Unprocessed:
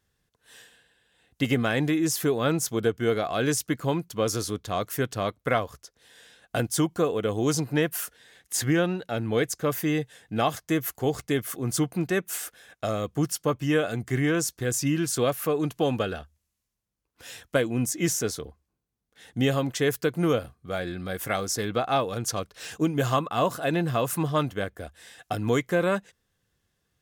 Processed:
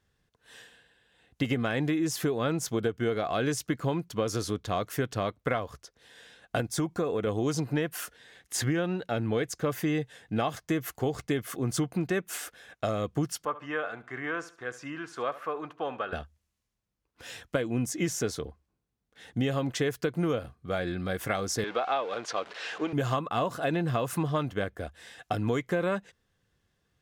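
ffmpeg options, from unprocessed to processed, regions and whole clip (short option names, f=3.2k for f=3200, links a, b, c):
-filter_complex "[0:a]asettb=1/sr,asplit=3[a][b][c];[a]atrim=end=6.614[d];[b]atrim=start=6.61:end=7.27,asetpts=PTS-STARTPTS,afade=t=in:d=0.004:c=qsin,afade=t=out:st=0.656:d=0.004:c=qsin,bandreject=f=3k:w=7.5,acompressor=threshold=-26dB:ratio=2:attack=3.2:release=140:knee=1:detection=peak[e];[c]atrim=start=7.266[f];[d][e]acrossfade=d=0.004:c1=hsin:c2=qsin[g];[g][f]acrossfade=d=0.004:c1=qsin:c2=hsin,asettb=1/sr,asplit=3[h][i][j];[h]atrim=end=13.454[k];[i]atrim=start=13.45:end=16.13,asetpts=PTS-STARTPTS,afade=t=in:d=0.004:c=qsin,afade=t=out:st=2.676:d=0.004:c=qsin,bandpass=f=1.2k:t=q:w=1.5,aecho=1:1:71|142|213:0.15|0.0479|0.0153,atrim=end_sample=118188[l];[j]atrim=start=16.126[m];[k][l]acrossfade=d=0.004:c1=hsin:c2=qsin[n];[n][m]acrossfade=d=0.004:c1=qsin:c2=hsin,asettb=1/sr,asplit=3[o][p][q];[o]atrim=end=21.644[r];[p]atrim=start=21.64:end=22.93,asetpts=PTS-STARTPTS,afade=t=in:d=0.004:c=qsin,afade=t=out:st=1.286:d=0.004:c=qsin,aeval=exprs='val(0)+0.5*0.0158*sgn(val(0))':c=same,highpass=490,lowpass=4.1k[s];[q]atrim=start=22.926[t];[r][s]acrossfade=d=0.004:c1=hsin:c2=qsin[u];[u][t]acrossfade=d=0.004:c1=qsin:c2=hsin,highshelf=f=7.4k:g=-11,acompressor=threshold=-26dB:ratio=6,volume=1.5dB"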